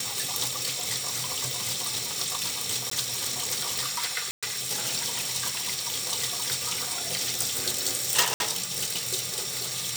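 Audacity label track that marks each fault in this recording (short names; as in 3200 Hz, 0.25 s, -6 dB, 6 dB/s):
2.900000	2.910000	gap 14 ms
4.310000	4.430000	gap 0.116 s
8.340000	8.400000	gap 61 ms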